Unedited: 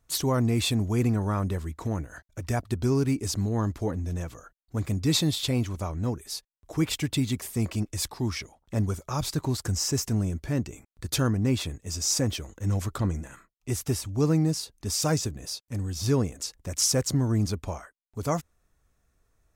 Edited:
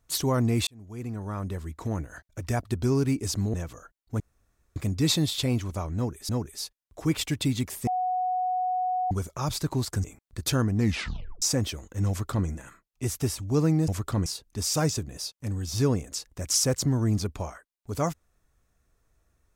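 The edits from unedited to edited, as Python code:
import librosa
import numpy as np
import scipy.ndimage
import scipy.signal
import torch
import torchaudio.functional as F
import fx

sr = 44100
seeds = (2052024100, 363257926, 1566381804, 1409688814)

y = fx.edit(x, sr, fx.fade_in_span(start_s=0.67, length_s=1.34),
    fx.cut(start_s=3.54, length_s=0.61),
    fx.insert_room_tone(at_s=4.81, length_s=0.56),
    fx.repeat(start_s=6.01, length_s=0.33, count=2),
    fx.bleep(start_s=7.59, length_s=1.24, hz=736.0, db=-24.0),
    fx.cut(start_s=9.76, length_s=0.94),
    fx.tape_stop(start_s=11.42, length_s=0.66),
    fx.duplicate(start_s=12.75, length_s=0.38, to_s=14.54), tone=tone)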